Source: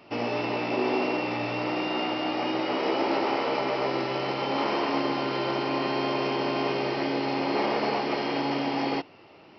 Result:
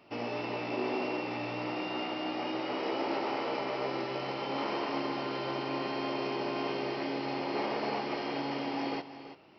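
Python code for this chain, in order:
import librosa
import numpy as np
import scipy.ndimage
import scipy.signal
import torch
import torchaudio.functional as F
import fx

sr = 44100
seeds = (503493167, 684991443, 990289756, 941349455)

y = x + 10.0 ** (-12.5 / 20.0) * np.pad(x, (int(334 * sr / 1000.0), 0))[:len(x)]
y = y * librosa.db_to_amplitude(-7.0)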